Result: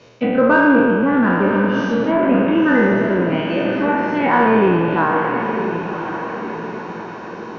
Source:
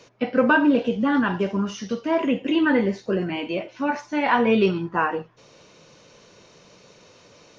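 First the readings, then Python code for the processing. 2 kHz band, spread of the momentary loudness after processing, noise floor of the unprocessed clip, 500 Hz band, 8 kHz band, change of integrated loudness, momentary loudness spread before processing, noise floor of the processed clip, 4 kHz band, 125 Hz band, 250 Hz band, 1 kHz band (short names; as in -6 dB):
+7.0 dB, 13 LU, -53 dBFS, +7.0 dB, n/a, +5.5 dB, 9 LU, -31 dBFS, +0.5 dB, +8.5 dB, +6.5 dB, +7.5 dB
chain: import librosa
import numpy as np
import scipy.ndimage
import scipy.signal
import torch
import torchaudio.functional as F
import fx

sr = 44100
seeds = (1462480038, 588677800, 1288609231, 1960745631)

p1 = fx.spec_trails(x, sr, decay_s=1.97)
p2 = fx.env_lowpass_down(p1, sr, base_hz=2300.0, full_db=-14.0)
p3 = scipy.signal.sosfilt(scipy.signal.butter(2, 42.0, 'highpass', fs=sr, output='sos'), p2)
p4 = fx.env_lowpass_down(p3, sr, base_hz=2700.0, full_db=-15.5)
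p5 = fx.low_shelf(p4, sr, hz=110.0, db=7.5)
p6 = 10.0 ** (-17.5 / 20.0) * np.tanh(p5 / 10.0 ** (-17.5 / 20.0))
p7 = p5 + (p6 * 10.0 ** (-9.0 / 20.0))
p8 = fx.air_absorb(p7, sr, metres=120.0)
y = fx.echo_diffused(p8, sr, ms=1044, feedback_pct=51, wet_db=-8)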